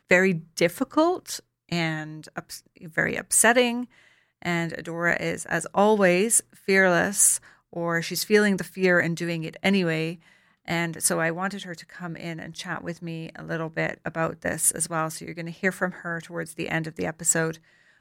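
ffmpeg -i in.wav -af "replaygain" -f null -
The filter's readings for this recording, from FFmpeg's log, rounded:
track_gain = +3.7 dB
track_peak = 0.451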